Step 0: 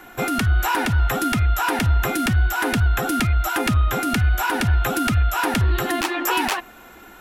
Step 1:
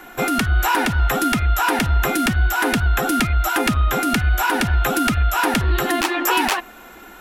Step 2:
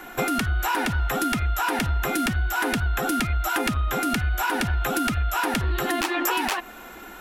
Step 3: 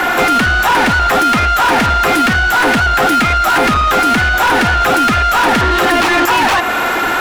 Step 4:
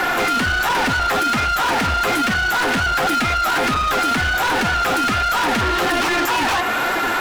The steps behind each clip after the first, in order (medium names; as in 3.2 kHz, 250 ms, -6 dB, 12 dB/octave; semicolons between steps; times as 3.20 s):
peaking EQ 100 Hz -11.5 dB 0.6 oct; trim +3 dB
compression, threshold -21 dBFS, peak gain reduction 8 dB; crackle 200 per s -54 dBFS
in parallel at +1.5 dB: compression, threshold -31 dBFS, peak gain reduction 10.5 dB; on the sum: overdrive pedal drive 30 dB, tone 2.2 kHz, clips at -8.5 dBFS; trim +4.5 dB
flange 1.3 Hz, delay 4.9 ms, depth 7.8 ms, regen +44%; hard clipper -16.5 dBFS, distortion -11 dB